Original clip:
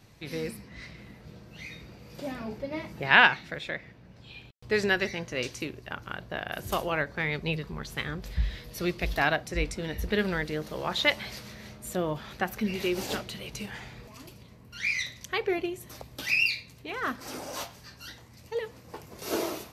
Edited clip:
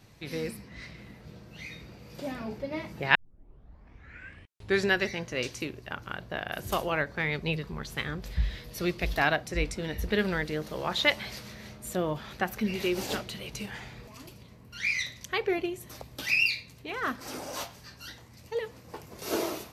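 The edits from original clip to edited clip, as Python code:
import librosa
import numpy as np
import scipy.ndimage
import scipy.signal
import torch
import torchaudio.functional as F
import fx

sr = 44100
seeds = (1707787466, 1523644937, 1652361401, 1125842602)

y = fx.edit(x, sr, fx.tape_start(start_s=3.15, length_s=1.73), tone=tone)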